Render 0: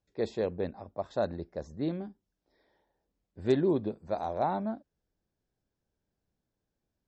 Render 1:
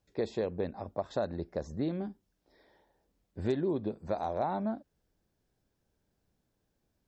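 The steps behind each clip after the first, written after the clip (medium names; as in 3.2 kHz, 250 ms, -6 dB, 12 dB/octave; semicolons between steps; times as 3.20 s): compression 3:1, threshold -37 dBFS, peak gain reduction 13 dB; trim +6 dB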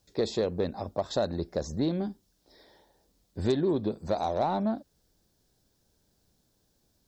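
in parallel at -8 dB: saturation -33.5 dBFS, distortion -8 dB; on the sum: resonant high shelf 3.2 kHz +6.5 dB, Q 1.5; trim +3 dB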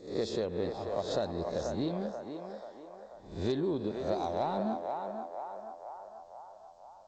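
reverse spectral sustain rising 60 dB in 0.47 s; band-passed feedback delay 486 ms, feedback 65%, band-pass 910 Hz, level -3 dB; trim -6 dB; G.722 64 kbps 16 kHz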